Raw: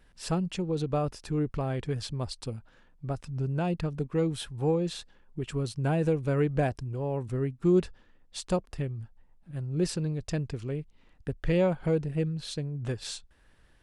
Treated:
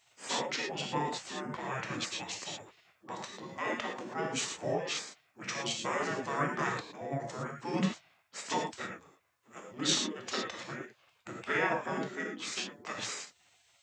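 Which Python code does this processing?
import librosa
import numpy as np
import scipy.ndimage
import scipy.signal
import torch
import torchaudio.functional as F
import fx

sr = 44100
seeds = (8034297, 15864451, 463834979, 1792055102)

y = scipy.signal.sosfilt(scipy.signal.butter(4, 190.0, 'highpass', fs=sr, output='sos'), x)
y = fx.rev_gated(y, sr, seeds[0], gate_ms=140, shape='flat', drr_db=0.0)
y = fx.spec_gate(y, sr, threshold_db=-15, keep='weak')
y = fx.formant_shift(y, sr, semitones=-5)
y = y * 10.0 ** (7.0 / 20.0)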